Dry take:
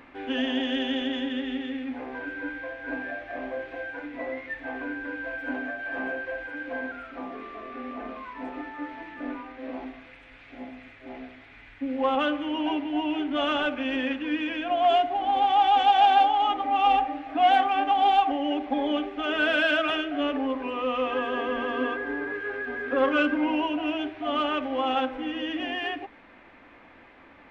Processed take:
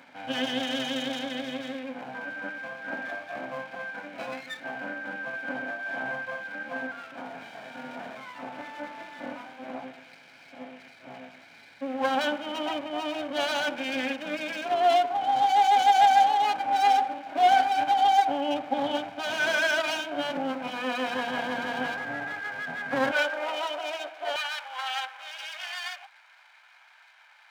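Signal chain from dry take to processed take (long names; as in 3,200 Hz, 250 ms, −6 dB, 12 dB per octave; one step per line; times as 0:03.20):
lower of the sound and its delayed copy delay 1.3 ms
high-pass filter 150 Hz 24 dB per octave, from 0:23.12 440 Hz, from 0:24.36 960 Hz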